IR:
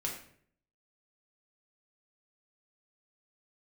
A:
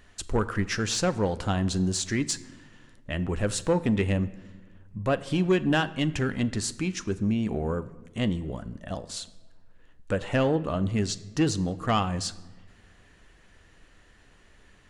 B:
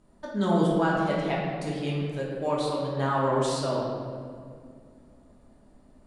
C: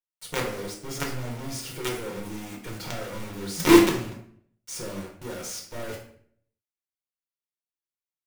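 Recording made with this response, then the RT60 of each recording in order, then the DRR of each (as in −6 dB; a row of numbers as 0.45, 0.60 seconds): C; 1.4, 2.2, 0.60 seconds; 12.5, −5.5, −2.0 decibels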